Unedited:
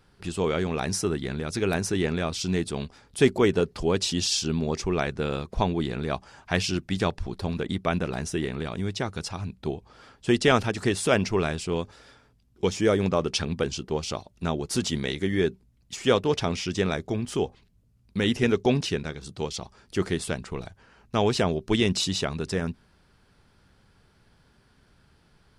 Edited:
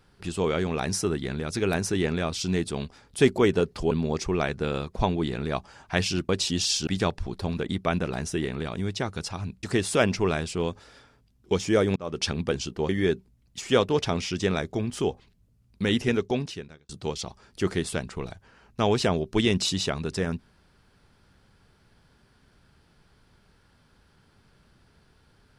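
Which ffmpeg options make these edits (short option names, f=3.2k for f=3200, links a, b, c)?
-filter_complex "[0:a]asplit=8[a][b][c][d][e][f][g][h];[a]atrim=end=3.912[i];[b]atrim=start=4.488:end=6.872[j];[c]atrim=start=3.908:end=4.492[k];[d]atrim=start=6.868:end=9.632[l];[e]atrim=start=10.748:end=13.08,asetpts=PTS-STARTPTS,afade=t=out:st=2.328:d=0.004:c=hsin[m];[f]atrim=start=13.08:end=14.012,asetpts=PTS-STARTPTS,afade=t=in:d=0.29[n];[g]atrim=start=15.238:end=19.24,asetpts=PTS-STARTPTS,afade=t=out:st=3.052:d=0.95[o];[h]atrim=start=19.24,asetpts=PTS-STARTPTS,afade=t=in:d=0.004:c=hsin[p];[i][j]acrossfade=d=0.004:c1=hsin:c2=hsin[q];[q][k]acrossfade=d=0.004:c1=hsin:c2=hsin[r];[r][l]acrossfade=d=0.004:c1=hsin:c2=hsin[s];[m][n]concat=n=2:v=0:a=1[t];[s][t]acrossfade=d=0.004:c1=hsin:c2=hsin[u];[o][p]concat=n=2:v=0:a=1[v];[u][v]acrossfade=d=0.004:c1=hsin:c2=hsin"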